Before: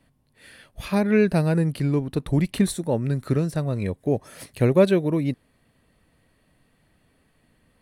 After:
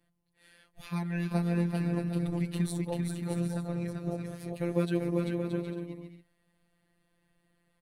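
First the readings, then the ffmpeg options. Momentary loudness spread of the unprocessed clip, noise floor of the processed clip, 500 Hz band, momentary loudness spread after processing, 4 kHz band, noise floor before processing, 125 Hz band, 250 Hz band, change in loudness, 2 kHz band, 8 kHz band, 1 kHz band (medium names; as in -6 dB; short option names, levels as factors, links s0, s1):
8 LU, -75 dBFS, -12.5 dB, 9 LU, -9.5 dB, -65 dBFS, -8.0 dB, -8.0 dB, -9.5 dB, -10.0 dB, -9.0 dB, -9.0 dB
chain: -af "aecho=1:1:390|624|764.4|848.6|899.2:0.631|0.398|0.251|0.158|0.1,afftfilt=real='hypot(re,im)*cos(PI*b)':imag='0':win_size=1024:overlap=0.75,volume=0.398"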